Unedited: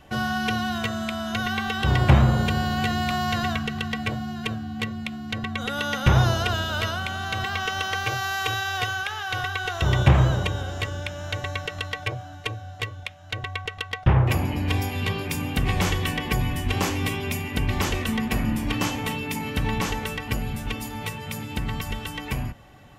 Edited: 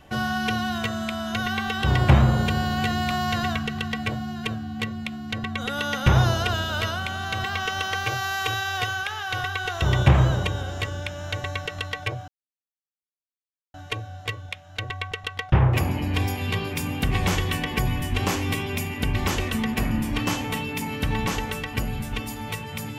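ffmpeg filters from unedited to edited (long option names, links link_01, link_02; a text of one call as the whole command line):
ffmpeg -i in.wav -filter_complex "[0:a]asplit=2[link_01][link_02];[link_01]atrim=end=12.28,asetpts=PTS-STARTPTS,afade=type=out:start_time=12.276:duration=0.004:curve=hsin,apad=pad_dur=1.46[link_03];[link_02]atrim=start=12.28,asetpts=PTS-STARTPTS,afade=type=in:duration=0.004:curve=hsin[link_04];[link_03][link_04]concat=n=2:v=0:a=1" out.wav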